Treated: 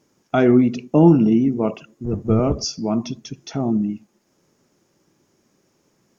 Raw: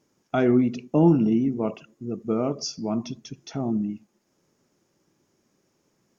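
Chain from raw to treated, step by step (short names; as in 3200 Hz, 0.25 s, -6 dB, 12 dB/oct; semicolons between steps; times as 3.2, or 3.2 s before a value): 2.04–2.65 octaver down 1 oct, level +1 dB; gain +5.5 dB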